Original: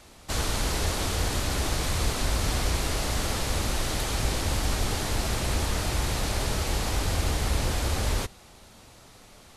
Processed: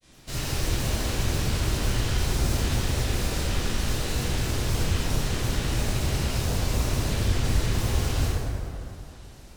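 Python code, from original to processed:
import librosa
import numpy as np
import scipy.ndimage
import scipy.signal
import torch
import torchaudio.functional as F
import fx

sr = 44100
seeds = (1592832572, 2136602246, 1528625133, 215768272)

y = fx.self_delay(x, sr, depth_ms=0.11)
y = fx.peak_eq(y, sr, hz=1000.0, db=-8.5, octaves=1.6)
y = fx.granulator(y, sr, seeds[0], grain_ms=100.0, per_s=20.0, spray_ms=28.0, spread_st=7)
y = fx.rev_plate(y, sr, seeds[1], rt60_s=2.7, hf_ratio=0.45, predelay_ms=0, drr_db=-9.0)
y = y * 10.0 ** (-5.0 / 20.0)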